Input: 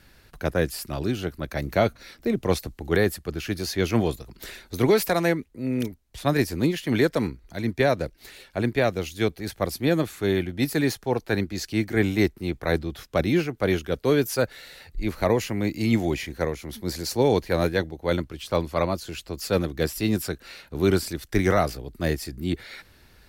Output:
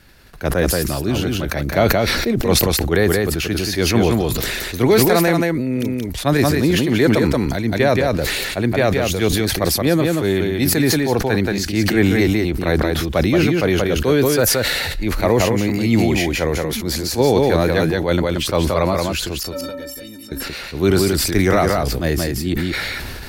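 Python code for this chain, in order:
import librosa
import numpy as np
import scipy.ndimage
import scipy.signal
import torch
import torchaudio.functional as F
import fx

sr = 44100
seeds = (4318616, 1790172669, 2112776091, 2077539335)

y = fx.stiff_resonator(x, sr, f0_hz=270.0, decay_s=0.27, stiffness=0.03, at=(19.43, 20.32))
y = y + 10.0 ** (-5.0 / 20.0) * np.pad(y, (int(178 * sr / 1000.0), 0))[:len(y)]
y = fx.sustainer(y, sr, db_per_s=20.0)
y = y * 10.0 ** (4.5 / 20.0)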